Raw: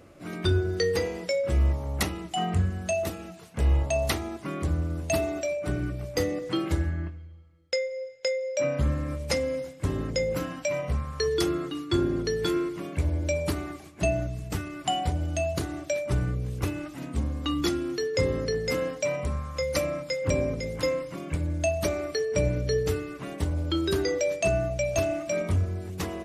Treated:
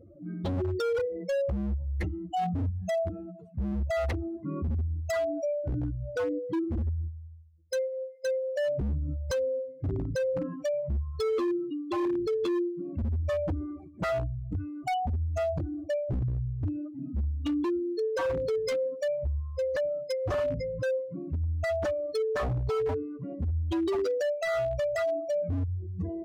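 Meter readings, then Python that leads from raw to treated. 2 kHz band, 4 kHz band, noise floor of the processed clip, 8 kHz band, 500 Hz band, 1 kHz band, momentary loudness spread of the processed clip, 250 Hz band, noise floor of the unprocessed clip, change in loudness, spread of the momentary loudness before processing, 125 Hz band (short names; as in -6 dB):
-5.5 dB, -11.5 dB, -46 dBFS, -14.0 dB, -1.0 dB, -1.5 dB, 6 LU, -2.0 dB, -46 dBFS, -2.5 dB, 6 LU, -3.5 dB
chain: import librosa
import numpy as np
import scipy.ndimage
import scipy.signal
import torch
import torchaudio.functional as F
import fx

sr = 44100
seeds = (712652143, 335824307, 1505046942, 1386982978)

y = fx.spec_expand(x, sr, power=3.1)
y = 10.0 ** (-24.0 / 20.0) * (np.abs((y / 10.0 ** (-24.0 / 20.0) + 3.0) % 4.0 - 2.0) - 1.0)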